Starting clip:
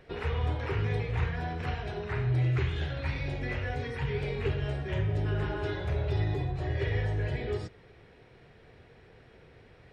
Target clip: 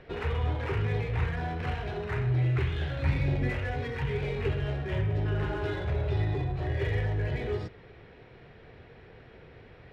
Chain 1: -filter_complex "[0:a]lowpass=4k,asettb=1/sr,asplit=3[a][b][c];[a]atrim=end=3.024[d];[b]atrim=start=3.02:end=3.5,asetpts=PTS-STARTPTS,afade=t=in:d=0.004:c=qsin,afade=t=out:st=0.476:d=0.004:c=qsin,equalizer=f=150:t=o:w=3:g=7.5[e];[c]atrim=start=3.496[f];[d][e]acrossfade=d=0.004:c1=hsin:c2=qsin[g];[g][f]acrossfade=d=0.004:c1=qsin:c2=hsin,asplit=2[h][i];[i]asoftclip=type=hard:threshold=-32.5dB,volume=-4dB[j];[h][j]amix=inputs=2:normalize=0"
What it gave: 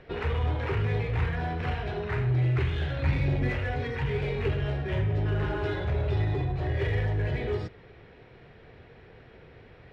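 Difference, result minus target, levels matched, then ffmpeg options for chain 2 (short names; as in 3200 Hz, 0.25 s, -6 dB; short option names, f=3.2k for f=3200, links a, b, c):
hard clip: distortion -4 dB
-filter_complex "[0:a]lowpass=4k,asettb=1/sr,asplit=3[a][b][c];[a]atrim=end=3.024[d];[b]atrim=start=3.02:end=3.5,asetpts=PTS-STARTPTS,afade=t=in:d=0.004:c=qsin,afade=t=out:st=0.476:d=0.004:c=qsin,equalizer=f=150:t=o:w=3:g=7.5[e];[c]atrim=start=3.496[f];[d][e]acrossfade=d=0.004:c1=hsin:c2=qsin[g];[g][f]acrossfade=d=0.004:c1=qsin:c2=hsin,asplit=2[h][i];[i]asoftclip=type=hard:threshold=-43dB,volume=-4dB[j];[h][j]amix=inputs=2:normalize=0"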